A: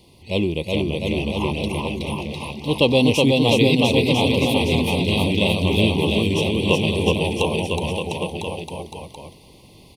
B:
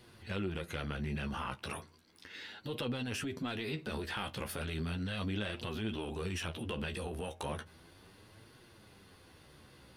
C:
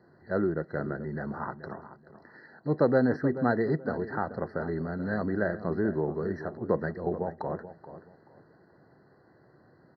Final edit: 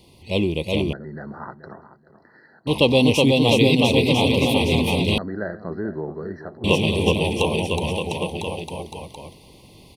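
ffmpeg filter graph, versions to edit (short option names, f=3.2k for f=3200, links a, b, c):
-filter_complex "[2:a]asplit=2[a][b];[0:a]asplit=3[c][d][e];[c]atrim=end=0.932[f];[a]atrim=start=0.928:end=2.672[g];[d]atrim=start=2.668:end=5.182[h];[b]atrim=start=5.178:end=6.642[i];[e]atrim=start=6.638[j];[f][g]acrossfade=d=0.004:c1=hsin:c2=hsin[k];[k][h]acrossfade=d=0.004:c1=hsin:c2=hsin[l];[l][i]acrossfade=d=0.004:c1=hsin:c2=hsin[m];[m][j]acrossfade=d=0.004:c1=hsin:c2=hsin"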